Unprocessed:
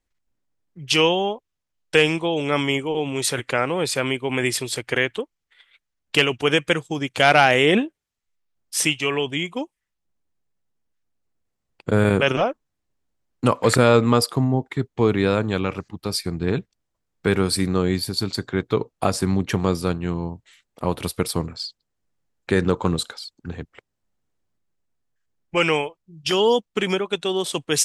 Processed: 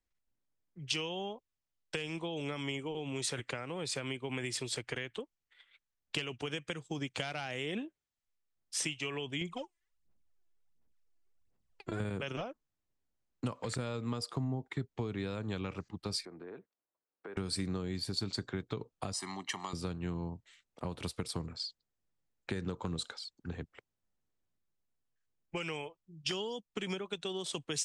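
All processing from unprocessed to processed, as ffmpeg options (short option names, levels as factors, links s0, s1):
-filter_complex "[0:a]asettb=1/sr,asplit=3[s0][s1][s2];[s0]atrim=end=9.414[s3];[s1]atrim=start=9.41:end=12,asetpts=PTS-STARTPTS,afade=t=in:d=0.004:c=qsin,afade=t=out:st=2.586:d=0.004:c=qsin,aphaser=in_gain=1:out_gain=1:delay=3:decay=0.74:speed=1.4:type=sinusoidal,acompressor=threshold=0.0316:ratio=1.5:attack=3.2:release=140:knee=1:detection=peak[s4];[s2]atrim=start=11.996[s5];[s3][s4]acrossfade=d=0.004:c1=hsin:c2=qsin[s6];[s6][s5]acrossfade=d=0.004:c1=qsin:c2=hsin,asettb=1/sr,asplit=3[s7][s8][s9];[s7]atrim=end=16.254[s10];[s8]atrim=start=16.25:end=17.37,asetpts=PTS-STARTPTS,afade=t=in:d=0.004:c=qsin,afade=t=out:st=1.116:d=0.004:c=qsin,acrossover=split=280 2000:gain=0.0708 1 0.0891[s11][s12][s13];[s11][s12][s13]amix=inputs=3:normalize=0,acompressor=threshold=0.0158:ratio=4:attack=3.2:release=140:knee=1:detection=peak,highpass=45[s14];[s9]atrim=start=17.366[s15];[s10][s14]acrossfade=d=0.004:c1=hsin:c2=qsin[s16];[s16][s15]acrossfade=d=0.004:c1=qsin:c2=hsin,asettb=1/sr,asplit=3[s17][s18][s19];[s17]atrim=end=19.134[s20];[s18]atrim=start=19.13:end=19.73,asetpts=PTS-STARTPTS,afade=t=in:d=0.004:c=qsin,afade=t=out:st=0.596:d=0.004:c=qsin,highpass=590,highshelf=f=7700:g=4.5,aecho=1:1:1:0.89,atrim=end_sample=26460[s21];[s19]atrim=start=19.726[s22];[s20][s21]acrossfade=d=0.004:c1=hsin:c2=qsin[s23];[s23][s22]acrossfade=d=0.004:c1=qsin:c2=hsin,acompressor=threshold=0.0891:ratio=6,lowpass=f=8900:w=0.5412,lowpass=f=8900:w=1.3066,acrossover=split=210|3000[s24][s25][s26];[s25]acompressor=threshold=0.0355:ratio=6[s27];[s24][s27][s26]amix=inputs=3:normalize=0,volume=0.376"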